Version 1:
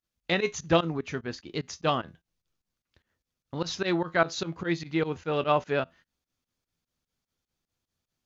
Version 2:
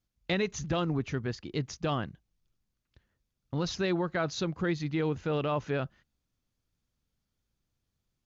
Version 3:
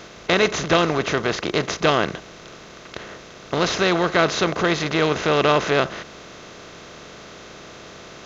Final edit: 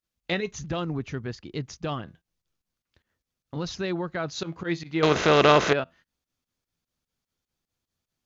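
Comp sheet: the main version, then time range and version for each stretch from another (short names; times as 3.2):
1
0.41–2.04 from 2, crossfade 0.24 s
3.56–4.35 from 2
5.03–5.73 from 3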